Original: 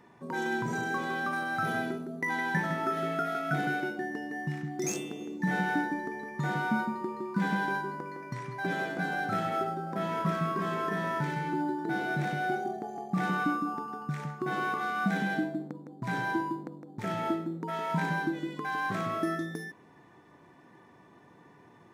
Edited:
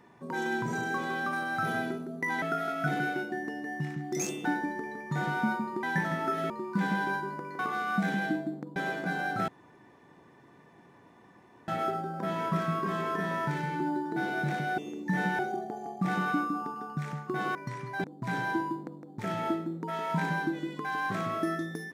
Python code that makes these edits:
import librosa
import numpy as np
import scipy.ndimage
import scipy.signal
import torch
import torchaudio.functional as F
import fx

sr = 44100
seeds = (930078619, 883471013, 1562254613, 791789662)

y = fx.edit(x, sr, fx.move(start_s=2.42, length_s=0.67, to_s=7.11),
    fx.move(start_s=5.12, length_s=0.61, to_s=12.51),
    fx.swap(start_s=8.2, length_s=0.49, other_s=14.67, other_length_s=1.17),
    fx.insert_room_tone(at_s=9.41, length_s=2.2), tone=tone)